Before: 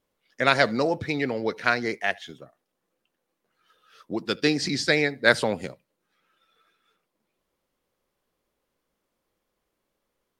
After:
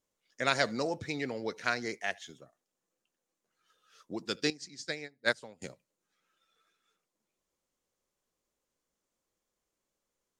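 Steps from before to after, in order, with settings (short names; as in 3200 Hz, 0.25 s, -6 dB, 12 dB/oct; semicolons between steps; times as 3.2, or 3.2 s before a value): bell 6900 Hz +12 dB 0.81 oct; 4.5–5.62 upward expander 2.5:1, over -28 dBFS; gain -9 dB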